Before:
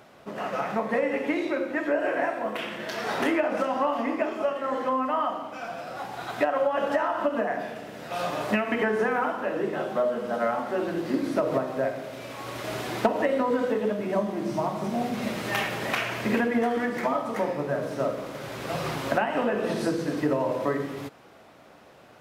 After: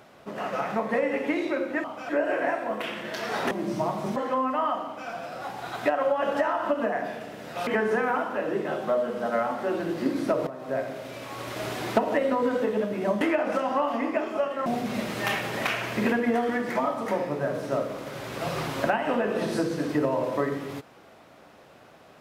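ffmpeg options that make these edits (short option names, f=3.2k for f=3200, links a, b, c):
-filter_complex "[0:a]asplit=9[a][b][c][d][e][f][g][h][i];[a]atrim=end=1.842[j];[b]atrim=start=5.388:end=5.642[k];[c]atrim=start=1.838:end=3.262[l];[d]atrim=start=14.288:end=14.942[m];[e]atrim=start=4.708:end=8.222[n];[f]atrim=start=8.748:end=11.55,asetpts=PTS-STARTPTS,afade=t=out:st=2.798:d=0.004:c=hsin:silence=0.149624[o];[g]atrim=start=11.55:end=14.292,asetpts=PTS-STARTPTS,afade=t=in:d=0.37:silence=0.149624[p];[h]atrim=start=3.258:end=4.712[q];[i]atrim=start=14.938[r];[j][k]acrossfade=d=0.004:c1=hsin:c2=hsin[s];[s][l]acrossfade=d=0.004:c1=hsin:c2=hsin[t];[t][m]acrossfade=d=0.004:c1=hsin:c2=hsin[u];[u][n]acrossfade=d=0.004:c1=hsin:c2=hsin[v];[o][p]concat=n=2:v=0:a=1[w];[v][w]acrossfade=d=0.004:c1=hsin:c2=hsin[x];[x][q]acrossfade=d=0.004:c1=hsin:c2=hsin[y];[y][r]acrossfade=d=0.004:c1=hsin:c2=hsin"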